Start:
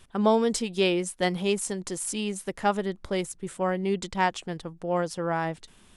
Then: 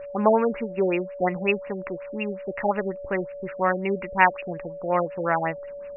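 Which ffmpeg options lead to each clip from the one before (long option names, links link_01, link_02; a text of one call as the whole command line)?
ffmpeg -i in.wav -af "tiltshelf=frequency=920:gain=-8,aeval=exprs='val(0)+0.00891*sin(2*PI*570*n/s)':channel_layout=same,afftfilt=real='re*lt(b*sr/1024,740*pow(2900/740,0.5+0.5*sin(2*PI*5.5*pts/sr)))':imag='im*lt(b*sr/1024,740*pow(2900/740,0.5+0.5*sin(2*PI*5.5*pts/sr)))':win_size=1024:overlap=0.75,volume=6.5dB" out.wav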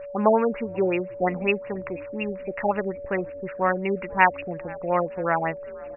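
ffmpeg -i in.wav -filter_complex "[0:a]asplit=4[link_01][link_02][link_03][link_04];[link_02]adelay=487,afreqshift=-110,volume=-23dB[link_05];[link_03]adelay=974,afreqshift=-220,volume=-29dB[link_06];[link_04]adelay=1461,afreqshift=-330,volume=-35dB[link_07];[link_01][link_05][link_06][link_07]amix=inputs=4:normalize=0" out.wav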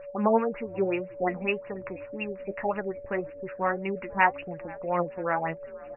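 ffmpeg -i in.wav -af "flanger=delay=5.7:depth=4.4:regen=49:speed=1.8:shape=triangular" out.wav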